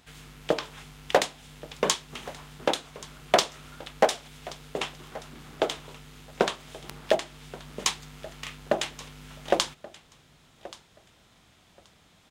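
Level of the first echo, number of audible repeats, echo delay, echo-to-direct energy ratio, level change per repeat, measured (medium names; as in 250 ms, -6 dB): -19.5 dB, 2, 1129 ms, -19.5 dB, -15.0 dB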